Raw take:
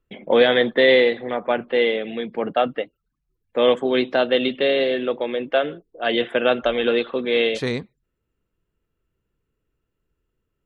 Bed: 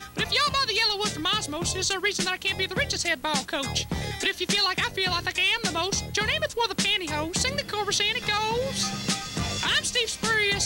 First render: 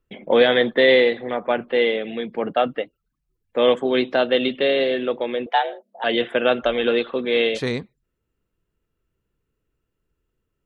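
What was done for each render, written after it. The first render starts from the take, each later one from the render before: 5.46–6.04 s: frequency shift +200 Hz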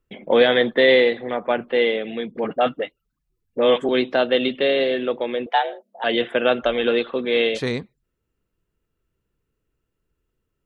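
2.31–3.89 s: phase dispersion highs, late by 42 ms, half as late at 620 Hz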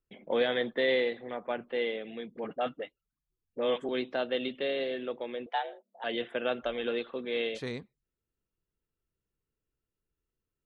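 trim -12.5 dB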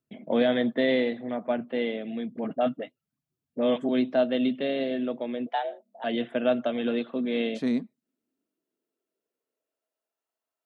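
high-pass sweep 130 Hz -> 750 Hz, 6.90–10.26 s; small resonant body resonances 250/640 Hz, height 11 dB, ringing for 40 ms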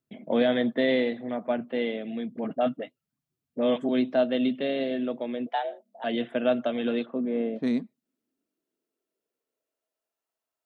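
7.05–7.62 s: low-pass 1.4 kHz -> 1 kHz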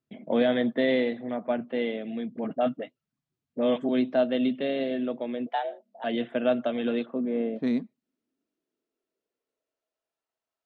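distance through air 77 m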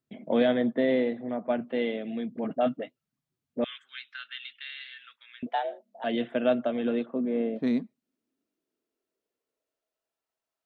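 0.52–1.50 s: treble shelf 2.4 kHz -10.5 dB; 3.64–5.43 s: elliptic high-pass 1.4 kHz, stop band 50 dB; 6.54–7.13 s: treble shelf 3.7 kHz -> 3.1 kHz -11 dB

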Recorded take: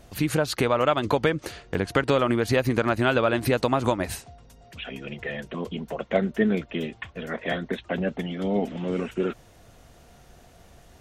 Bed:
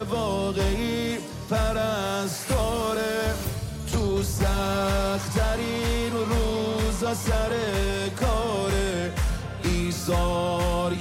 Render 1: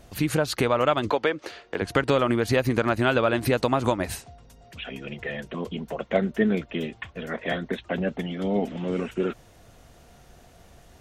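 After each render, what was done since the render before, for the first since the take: 1.10–1.82 s: three-band isolator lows -17 dB, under 280 Hz, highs -13 dB, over 5.8 kHz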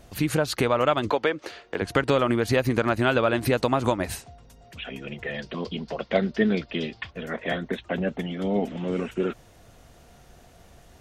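5.34–7.11 s: resonant low-pass 4.8 kHz, resonance Q 5.5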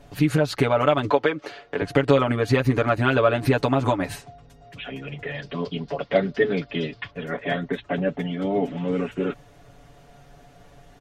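treble shelf 5 kHz -10 dB; comb 7 ms, depth 96%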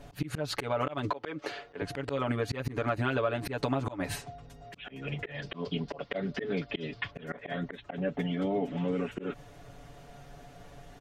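slow attack 223 ms; compression 3:1, threshold -29 dBFS, peak gain reduction 12 dB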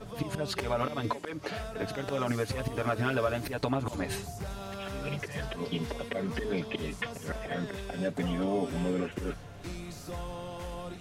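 add bed -15.5 dB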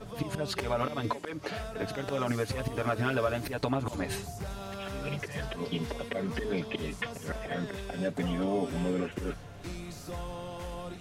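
no audible change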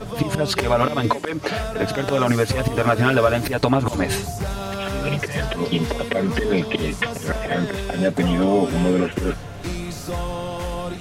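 trim +12 dB

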